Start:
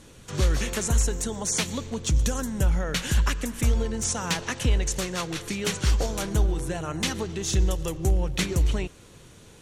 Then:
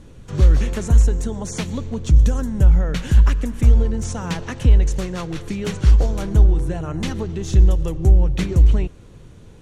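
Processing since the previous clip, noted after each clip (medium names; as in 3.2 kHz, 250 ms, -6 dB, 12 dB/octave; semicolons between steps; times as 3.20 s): tilt EQ -2.5 dB/octave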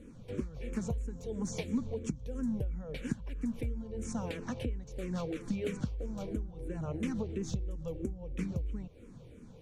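compression 10:1, threshold -24 dBFS, peak gain reduction 17 dB; small resonant body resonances 240/480/2300 Hz, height 10 dB, ringing for 25 ms; barber-pole phaser -3 Hz; trim -9 dB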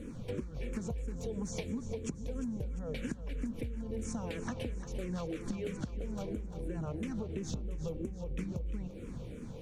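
compression 10:1, threshold -42 dBFS, peak gain reduction 16 dB; two-band feedback delay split 430 Hz, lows 470 ms, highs 348 ms, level -12 dB; trim +7.5 dB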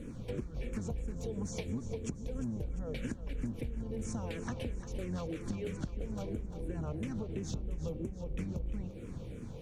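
octave divider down 1 oct, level -4 dB; trim -1 dB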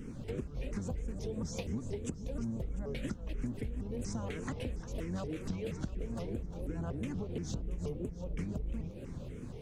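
vibrato with a chosen wave saw up 4.2 Hz, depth 250 cents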